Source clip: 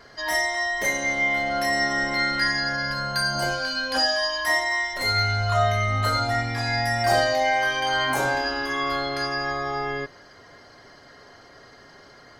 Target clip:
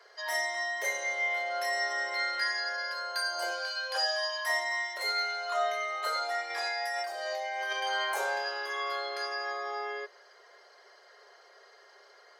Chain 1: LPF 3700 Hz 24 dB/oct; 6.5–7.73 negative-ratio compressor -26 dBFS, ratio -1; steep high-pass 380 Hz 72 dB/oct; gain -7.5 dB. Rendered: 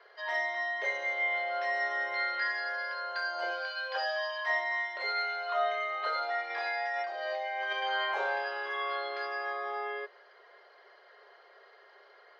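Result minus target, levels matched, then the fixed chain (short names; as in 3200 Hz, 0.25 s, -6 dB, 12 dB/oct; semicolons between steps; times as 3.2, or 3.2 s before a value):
4000 Hz band -5.0 dB
6.5–7.73 negative-ratio compressor -26 dBFS, ratio -1; steep high-pass 380 Hz 72 dB/oct; gain -7.5 dB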